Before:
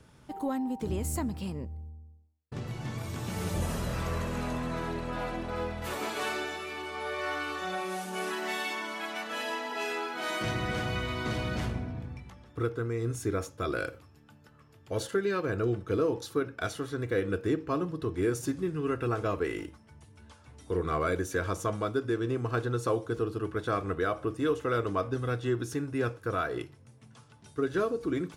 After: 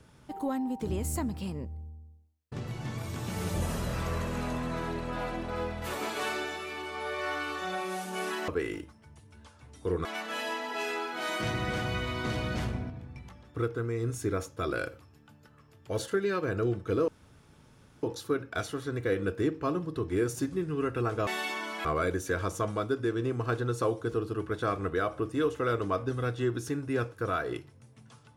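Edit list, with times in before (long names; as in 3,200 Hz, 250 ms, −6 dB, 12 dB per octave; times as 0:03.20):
0:08.48–0:09.06: swap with 0:19.33–0:20.90
0:11.91–0:12.17: clip gain −4.5 dB
0:16.09: splice in room tone 0.95 s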